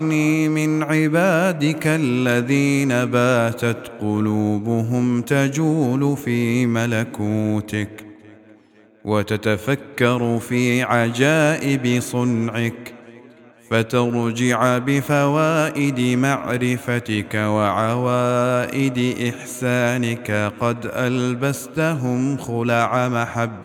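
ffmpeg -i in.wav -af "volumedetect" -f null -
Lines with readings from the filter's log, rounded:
mean_volume: -19.5 dB
max_volume: -2.5 dB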